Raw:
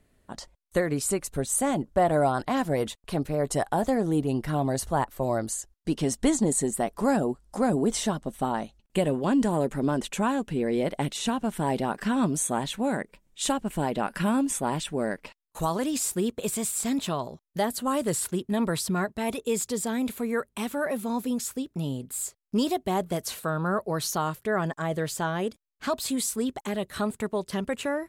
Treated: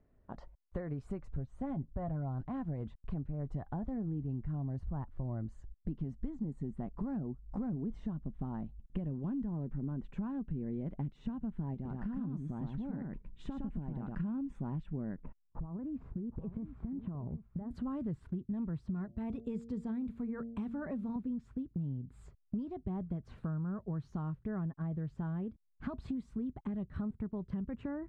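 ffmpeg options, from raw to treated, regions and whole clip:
-filter_complex "[0:a]asettb=1/sr,asplit=3[s0][s1][s2];[s0]atrim=end=1.344[s3];[s1]atrim=start=1.34:end=2.47,asetpts=PTS-STARTPTS,afade=t=in:d=0.004:c=qsin,afade=t=out:st=1.126:d=0.004:c=qsin,lowpass=7600,equalizer=f=61:t=o:w=2.7:g=6,aecho=1:1:7.5:0.44,atrim=end_sample=49833[s4];[s2]atrim=start=2.466[s5];[s3][s4]acrossfade=d=0.004:c1=hsin:c2=qsin[s6];[s6][s5]acrossfade=d=0.004:c1=qsin:c2=hsin,asettb=1/sr,asplit=3[s7][s8][s9];[s7]atrim=end=11.744[s10];[s8]atrim=start=11.74:end=14.15,asetpts=PTS-STARTPTS,afade=t=in:d=0.004:c=qsin,afade=t=out:st=2.406:d=0.004:c=qsin,acompressor=threshold=0.0282:ratio=2.5:attack=3.2:release=140:knee=1:detection=peak,aecho=1:1:112:0.668,atrim=end_sample=106281[s11];[s9]atrim=start=14.146[s12];[s10][s11]acrossfade=d=0.004:c1=hsin:c2=qsin[s13];[s13][s12]acrossfade=d=0.004:c1=qsin:c2=hsin,asettb=1/sr,asplit=3[s14][s15][s16];[s14]atrim=end=15.174[s17];[s15]atrim=start=15.17:end=17.71,asetpts=PTS-STARTPTS,afade=t=in:d=0.004:c=qsin,afade=t=out:st=2.536:d=0.004:c=qsin,lowpass=1300,acompressor=threshold=0.0158:ratio=6:attack=3.2:release=140:knee=1:detection=peak,aecho=1:1:766:0.211,atrim=end_sample=112014[s18];[s16]atrim=start=17.706[s19];[s17][s18]acrossfade=d=0.004:c1=hsin:c2=qsin[s20];[s20][s19]acrossfade=d=0.004:c1=qsin:c2=hsin,asettb=1/sr,asplit=3[s21][s22][s23];[s21]atrim=end=18.894[s24];[s22]atrim=start=18.89:end=21.16,asetpts=PTS-STARTPTS,afade=t=in:d=0.004:c=qsin,afade=t=out:st=2.266:d=0.004:c=qsin,bass=f=250:g=-1,treble=f=4000:g=6,bandreject=f=115.5:t=h:w=4,bandreject=f=231:t=h:w=4,bandreject=f=346.5:t=h:w=4,bandreject=f=462:t=h:w=4,bandreject=f=577.5:t=h:w=4,bandreject=f=693:t=h:w=4[s25];[s23]atrim=start=21.156[s26];[s24][s25]acrossfade=d=0.004:c1=hsin:c2=qsin[s27];[s27][s26]acrossfade=d=0.004:c1=qsin:c2=hsin,lowpass=1200,asubboost=boost=10:cutoff=170,acompressor=threshold=0.0282:ratio=6,volume=0.562"

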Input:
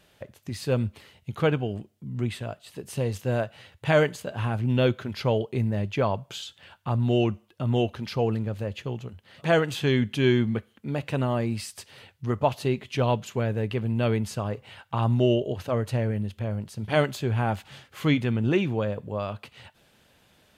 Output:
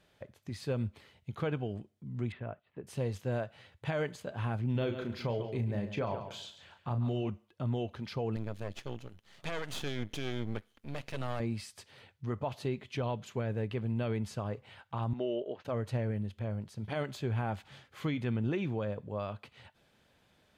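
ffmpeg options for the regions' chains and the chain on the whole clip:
-filter_complex "[0:a]asettb=1/sr,asplit=3[s0][s1][s2];[s0]atrim=end=2.324[s3];[s1]atrim=start=2.32:end=2.87,asetpts=PTS-STARTPTS,afade=t=in:d=0.004:c=qsin,afade=t=out:st=0.546:d=0.004:c=qsin,lowpass=f=2400:w=0.5412,lowpass=f=2400:w=1.3066,agate=range=0.355:threshold=0.002:ratio=16:release=100:detection=peak[s4];[s2]atrim=start=2.866[s5];[s3][s4]acrossfade=d=0.004:c1=hsin:c2=qsin[s6];[s6][s5]acrossfade=d=0.004:c1=qsin:c2=hsin,asettb=1/sr,asplit=3[s7][s8][s9];[s7]atrim=end=4.724[s10];[s8]atrim=start=4.72:end=7.3,asetpts=PTS-STARTPTS,afade=t=in:d=0.004:c=qsin,afade=t=out:st=2.576:d=0.004:c=qsin,deesser=0.9,asplit=2[s11][s12];[s12]adelay=34,volume=0.422[s13];[s11][s13]amix=inputs=2:normalize=0,atrim=end_sample=113778,aecho=1:1:139|278|417:0.251|0.0603|0.0145,atrim=end_sample=113778[s14];[s9]atrim=start=7.296[s15];[s10][s14]acrossfade=d=0.004:c1=hsin:c2=qsin[s16];[s16][s15]acrossfade=d=0.004:c1=qsin:c2=hsin,asettb=1/sr,asplit=3[s17][s18][s19];[s17]atrim=end=8.364[s20];[s18]atrim=start=8.36:end=11.4,asetpts=PTS-STARTPTS,afade=t=in:d=0.004:c=qsin,afade=t=out:st=3.036:d=0.004:c=qsin,highshelf=f=2900:g=11,bandreject=f=7900:w=14,aeval=exprs='max(val(0),0)':c=same[s21];[s19]atrim=start=11.396[s22];[s20][s21]acrossfade=d=0.004:c1=hsin:c2=qsin[s23];[s23][s22]acrossfade=d=0.004:c1=qsin:c2=hsin,asettb=1/sr,asplit=3[s24][s25][s26];[s24]atrim=end=15.134[s27];[s25]atrim=start=15.13:end=15.65,asetpts=PTS-STARTPTS,afade=t=in:d=0.004:c=qsin,afade=t=out:st=0.516:d=0.004:c=qsin,agate=range=0.0224:threshold=0.0224:ratio=3:release=100:detection=peak,highpass=330,lowpass=3500[s28];[s26]atrim=start=15.646[s29];[s27][s28]acrossfade=d=0.004:c1=hsin:c2=qsin[s30];[s30][s29]acrossfade=d=0.004:c1=qsin:c2=hsin,highshelf=f=7400:g=-9,bandreject=f=2800:w=19,alimiter=limit=0.126:level=0:latency=1:release=86,volume=0.473"

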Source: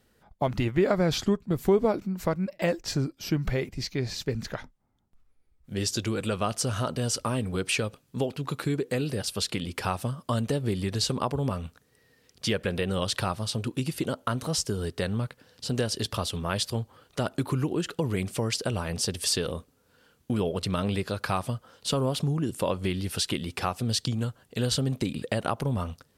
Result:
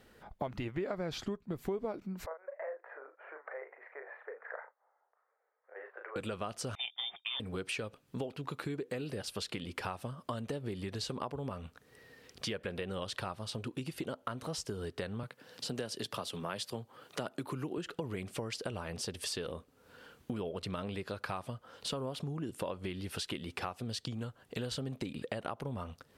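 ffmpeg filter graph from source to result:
-filter_complex "[0:a]asettb=1/sr,asplit=3[s0][s1][s2];[s0]atrim=end=2.264[s3];[s1]atrim=start=2.26:end=6.16,asetpts=PTS-STARTPTS,afade=t=in:d=0.004:c=qsin,afade=t=out:st=3.896:d=0.004:c=qsin,acompressor=threshold=0.01:ratio=2.5:attack=3.2:release=140:knee=1:detection=peak,asuperpass=centerf=950:order=12:qfactor=0.66,asplit=2[s4][s5];[s5]adelay=37,volume=0.501[s6];[s4][s6]amix=inputs=2:normalize=0,atrim=end_sample=171990[s7];[s2]atrim=start=6.156[s8];[s3][s7]acrossfade=d=0.004:c1=hsin:c2=qsin[s9];[s9][s8]acrossfade=d=0.004:c1=qsin:c2=hsin,asettb=1/sr,asplit=3[s10][s11][s12];[s10]atrim=end=6.754[s13];[s11]atrim=start=6.75:end=7.4,asetpts=PTS-STARTPTS,afade=t=in:d=0.004:c=qsin,afade=t=out:st=0.646:d=0.004:c=qsin,agate=range=0.0794:threshold=0.0316:ratio=16:release=100:detection=peak,lowpass=f=3100:t=q:w=0.5098,lowpass=f=3100:t=q:w=0.6013,lowpass=f=3100:t=q:w=0.9,lowpass=f=3100:t=q:w=2.563,afreqshift=-3700[s14];[s12]atrim=start=7.396[s15];[s13][s14]acrossfade=d=0.004:c1=hsin:c2=qsin[s16];[s16][s15]acrossfade=d=0.004:c1=qsin:c2=hsin,asettb=1/sr,asplit=3[s17][s18][s19];[s17]atrim=end=15.234[s20];[s18]atrim=start=15.23:end=17.78,asetpts=PTS-STARTPTS,afade=t=in:d=0.004:c=qsin,afade=t=out:st=2.546:d=0.004:c=qsin,highpass=f=120:w=0.5412,highpass=f=120:w=1.3066,highshelf=f=6800:g=5[s21];[s19]atrim=start=17.776[s22];[s20][s21]acrossfade=d=0.004:c1=hsin:c2=qsin[s23];[s23][s22]acrossfade=d=0.004:c1=qsin:c2=hsin,bass=f=250:g=-5,treble=f=4000:g=-7,acompressor=threshold=0.00398:ratio=3,volume=2.24"

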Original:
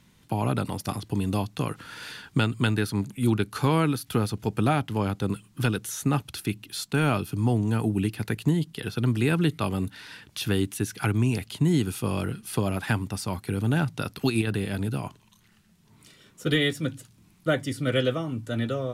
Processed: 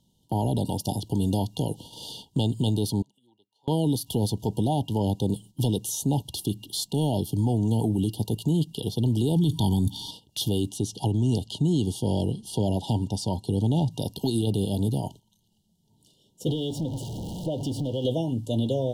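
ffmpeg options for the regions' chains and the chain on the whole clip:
-filter_complex "[0:a]asettb=1/sr,asplit=3[s0][s1][s2];[s0]atrim=end=3.024[s3];[s1]atrim=start=3.02:end=3.68,asetpts=PTS-STARTPTS,afade=t=in:d=0.004:c=qsin,afade=t=out:st=0.656:d=0.004:c=qsin,bandpass=f=1700:t=q:w=7.5,acompressor=mode=upward:threshold=0.00251:ratio=2.5:attack=3.2:release=140:knee=2.83:detection=peak[s4];[s2]atrim=start=3.676[s5];[s3][s4]acrossfade=d=0.004:c1=hsin:c2=qsin[s6];[s6][s5]acrossfade=d=0.004:c1=qsin:c2=hsin,asettb=1/sr,asplit=3[s7][s8][s9];[s7]atrim=end=9.364[s10];[s8]atrim=start=9.36:end=10.11,asetpts=PTS-STARTPTS,afade=t=in:d=0.004:c=qsin,afade=t=out:st=0.746:d=0.004:c=qsin,equalizer=f=510:t=o:w=1.1:g=-3.5,acontrast=32,aecho=1:1:0.9:0.75,atrim=end_sample=33075[s11];[s9]atrim=start=10.106[s12];[s10][s11]acrossfade=d=0.004:c1=hsin:c2=qsin[s13];[s13][s12]acrossfade=d=0.004:c1=qsin:c2=hsin,asettb=1/sr,asplit=3[s14][s15][s16];[s14]atrim=end=10.694[s17];[s15]atrim=start=10.69:end=13.91,asetpts=PTS-STARTPTS,afade=t=in:d=0.004:c=qsin,afade=t=out:st=3.216:d=0.004:c=qsin,lowpass=7900,deesser=0.65[s18];[s16]atrim=start=13.906[s19];[s17][s18]acrossfade=d=0.004:c1=hsin:c2=qsin[s20];[s20][s19]acrossfade=d=0.004:c1=qsin:c2=hsin,asettb=1/sr,asplit=3[s21][s22][s23];[s21]atrim=end=16.504[s24];[s22]atrim=start=16.5:end=18.05,asetpts=PTS-STARTPTS,afade=t=in:d=0.004:c=qsin,afade=t=out:st=1.546:d=0.004:c=qsin,aeval=exprs='val(0)+0.5*0.0282*sgn(val(0))':c=same,lowpass=f=2300:p=1,acompressor=threshold=0.0398:ratio=6:attack=3.2:release=140:knee=1:detection=peak[s25];[s23]atrim=start=18.046[s26];[s24][s25]acrossfade=d=0.004:c1=hsin:c2=qsin[s27];[s27][s26]acrossfade=d=0.004:c1=qsin:c2=hsin,afftfilt=real='re*(1-between(b*sr/4096,960,2800))':imag='im*(1-between(b*sr/4096,960,2800))':win_size=4096:overlap=0.75,agate=range=0.282:threshold=0.00501:ratio=16:detection=peak,alimiter=limit=0.106:level=0:latency=1:release=16,volume=1.5"

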